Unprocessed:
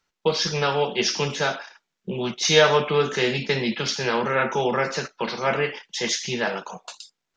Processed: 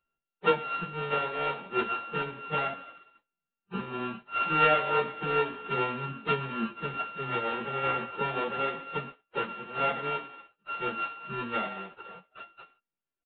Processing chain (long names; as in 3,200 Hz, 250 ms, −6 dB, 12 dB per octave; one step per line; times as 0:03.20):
samples sorted by size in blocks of 32 samples
transient designer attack +6 dB, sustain −1 dB
downsampling to 8,000 Hz
time stretch by phase vocoder 1.8×
level −7 dB